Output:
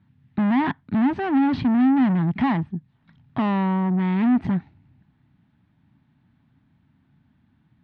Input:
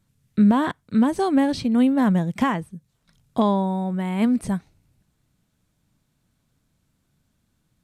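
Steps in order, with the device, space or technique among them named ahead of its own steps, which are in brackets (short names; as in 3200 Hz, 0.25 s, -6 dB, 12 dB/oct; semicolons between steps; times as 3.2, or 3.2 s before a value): guitar amplifier (tube stage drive 30 dB, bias 0.6; tone controls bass +8 dB, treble -3 dB; speaker cabinet 91–3500 Hz, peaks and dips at 260 Hz +7 dB, 500 Hz -10 dB, 860 Hz +8 dB, 1800 Hz +6 dB); gain +5 dB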